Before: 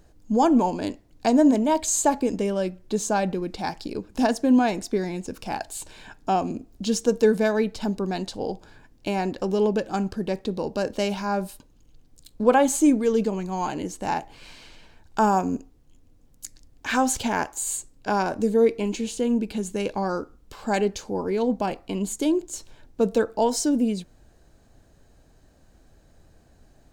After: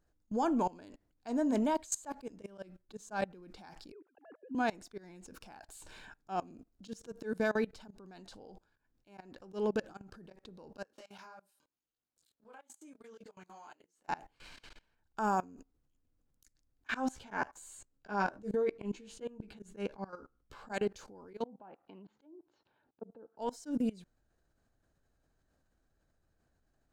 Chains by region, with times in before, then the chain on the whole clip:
3.92–4.55 sine-wave speech + air absorption 380 m
10.84–14.08 HPF 670 Hz 6 dB/oct + compressor 10:1, threshold -38 dBFS + detuned doubles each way 29 cents
16.87–20.72 LPF 4000 Hz 6 dB/oct + doubler 15 ms -5 dB
21.44–23.38 treble ducked by the level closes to 540 Hz, closed at -17.5 dBFS + level quantiser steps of 18 dB + speaker cabinet 170–3800 Hz, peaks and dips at 840 Hz +6 dB, 2200 Hz -4 dB, 3300 Hz -4 dB
whole clip: bell 1400 Hz +6.5 dB 0.76 oct; level quantiser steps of 23 dB; auto swell 0.122 s; gain -6.5 dB

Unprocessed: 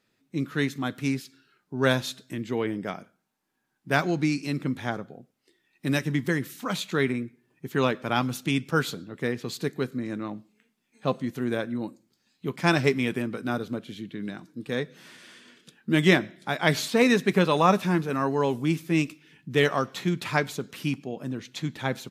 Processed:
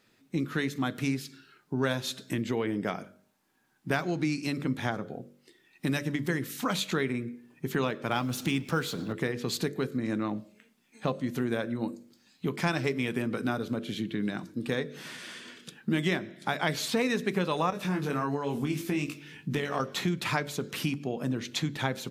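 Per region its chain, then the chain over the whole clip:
8.11–9.13 G.711 law mismatch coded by mu + de-esser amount 60%
17.7–19.8 compressor 3:1, threshold -27 dBFS + doubler 21 ms -4 dB
whole clip: compressor 4:1, threshold -33 dBFS; de-hum 48.19 Hz, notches 13; gain +6.5 dB

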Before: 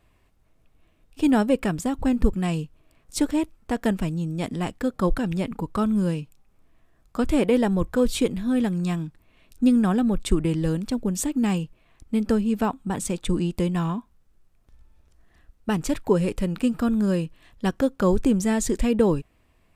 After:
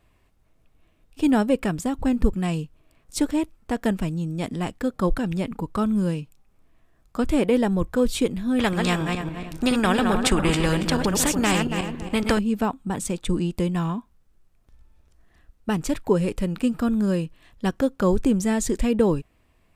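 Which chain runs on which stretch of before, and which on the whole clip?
8.59–12.39 regenerating reverse delay 0.14 s, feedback 44%, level -7 dB + high shelf 4000 Hz -11.5 dB + spectral compressor 2:1
whole clip: dry

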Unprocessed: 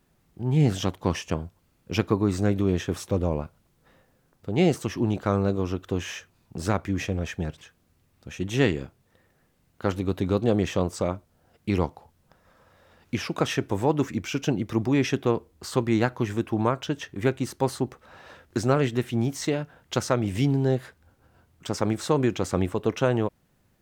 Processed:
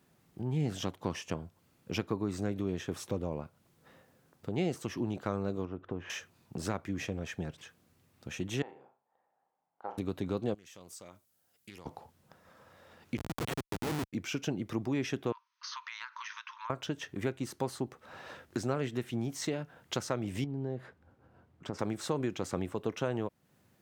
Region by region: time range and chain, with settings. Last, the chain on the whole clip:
5.65–6.1 LPF 1500 Hz + compressor 1.5:1, threshold -33 dBFS
8.62–9.98 band-pass 820 Hz, Q 5.9 + flutter echo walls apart 6.1 m, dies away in 0.28 s
10.54–11.86 pre-emphasis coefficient 0.9 + compressor 5:1, threshold -45 dBFS + Doppler distortion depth 0.19 ms
13.17–14.13 block floating point 3-bit + LPF 4600 Hz 24 dB/oct + Schmitt trigger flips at -25.5 dBFS
15.32–16.7 brick-wall FIR band-pass 890–6500 Hz + compressor 10:1, threshold -37 dBFS
20.44–21.79 LPF 1200 Hz 6 dB/oct + compressor, threshold -25 dBFS
whole clip: compressor 2:1, threshold -37 dBFS; HPF 100 Hz

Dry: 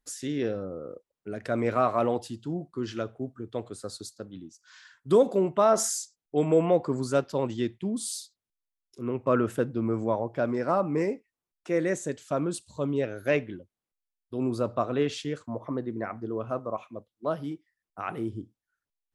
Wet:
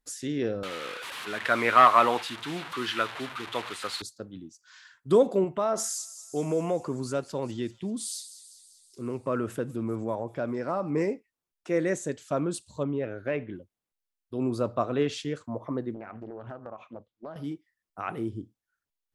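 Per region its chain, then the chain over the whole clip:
0.63–4.02 delta modulation 64 kbps, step -39 dBFS + HPF 280 Hz 6 dB/oct + band shelf 1900 Hz +13 dB 2.5 oct
5.44–10.9 compressor 1.5:1, threshold -32 dBFS + thin delay 0.196 s, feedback 60%, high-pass 3700 Hz, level -11.5 dB
12.83–13.55 LPF 2600 Hz + compressor 2.5:1, threshold -26 dBFS
15.94–17.36 air absorption 110 m + compressor 16:1, threshold -35 dBFS + Doppler distortion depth 0.47 ms
whole clip: dry

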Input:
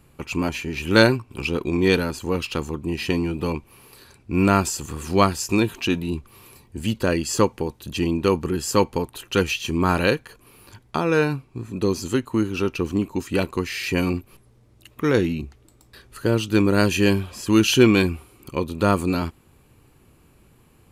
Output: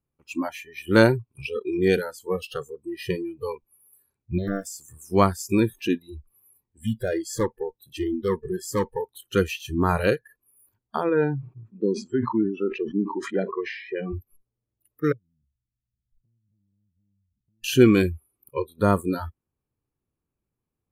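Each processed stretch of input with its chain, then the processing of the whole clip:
4.38–4.8 compressor 2:1, threshold -27 dBFS + Doppler distortion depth 0.81 ms
5.93–9.17 high shelf 9900 Hz -4 dB + overloaded stage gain 17.5 dB
11.09–14.13 HPF 140 Hz + tape spacing loss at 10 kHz 25 dB + sustainer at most 56 dB/s
15.12–17.64 inverse Chebyshev low-pass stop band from 1100 Hz, stop band 80 dB + compressor 10:1, threshold -39 dBFS + mismatched tape noise reduction encoder only
whole clip: bell 4400 Hz -9 dB 2.3 oct; spectral noise reduction 29 dB

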